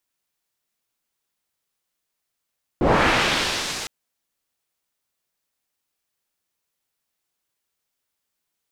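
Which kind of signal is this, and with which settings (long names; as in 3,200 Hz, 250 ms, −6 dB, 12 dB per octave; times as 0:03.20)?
filter sweep on noise white, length 1.06 s lowpass, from 300 Hz, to 6,400 Hz, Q 0.92, linear, gain ramp −25 dB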